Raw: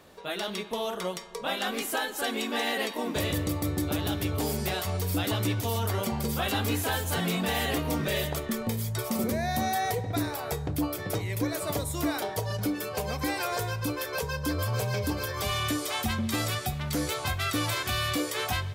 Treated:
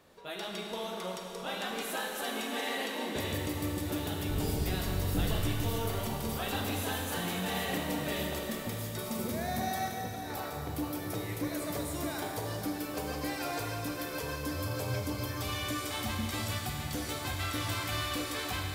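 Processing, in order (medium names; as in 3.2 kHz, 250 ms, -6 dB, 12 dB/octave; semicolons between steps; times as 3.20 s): 4.29–5.40 s: octave divider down 1 oct, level +4 dB; 9.88–10.64 s: compressor with a negative ratio -35 dBFS, ratio -1; Schroeder reverb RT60 3.7 s, combs from 33 ms, DRR 0.5 dB; trim -7.5 dB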